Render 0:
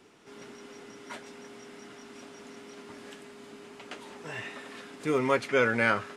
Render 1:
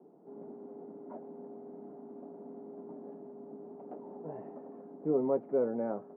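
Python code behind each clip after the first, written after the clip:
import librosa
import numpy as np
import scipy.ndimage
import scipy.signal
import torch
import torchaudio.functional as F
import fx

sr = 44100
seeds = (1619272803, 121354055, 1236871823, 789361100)

y = fx.rider(x, sr, range_db=4, speed_s=2.0)
y = scipy.signal.sosfilt(scipy.signal.ellip(3, 1.0, 80, [160.0, 770.0], 'bandpass', fs=sr, output='sos'), y)
y = F.gain(torch.from_numpy(y), -2.0).numpy()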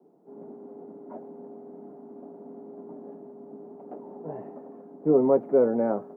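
y = fx.band_widen(x, sr, depth_pct=40)
y = F.gain(torch.from_numpy(y), 5.5).numpy()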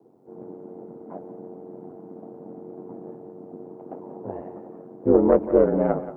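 y = fx.tracing_dist(x, sr, depth_ms=0.076)
y = y * np.sin(2.0 * np.pi * 46.0 * np.arange(len(y)) / sr)
y = y + 10.0 ** (-13.5 / 20.0) * np.pad(y, (int(179 * sr / 1000.0), 0))[:len(y)]
y = F.gain(torch.from_numpy(y), 6.0).numpy()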